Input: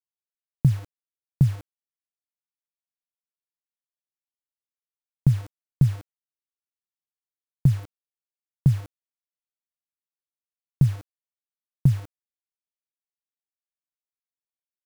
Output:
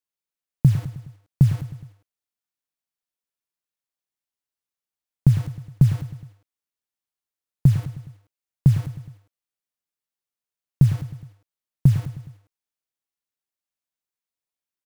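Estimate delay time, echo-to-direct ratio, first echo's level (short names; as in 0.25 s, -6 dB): 0.104 s, -11.5 dB, -13.0 dB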